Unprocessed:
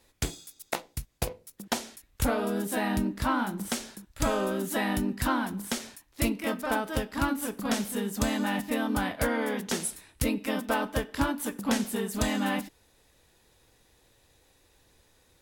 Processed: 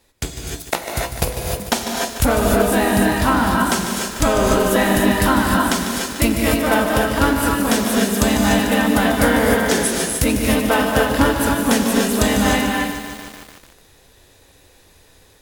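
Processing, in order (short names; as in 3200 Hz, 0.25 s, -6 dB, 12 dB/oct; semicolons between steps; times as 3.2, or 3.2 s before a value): AGC gain up to 6 dB; non-linear reverb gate 0.33 s rising, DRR 0.5 dB; lo-fi delay 0.148 s, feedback 80%, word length 6-bit, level -10 dB; gain +4 dB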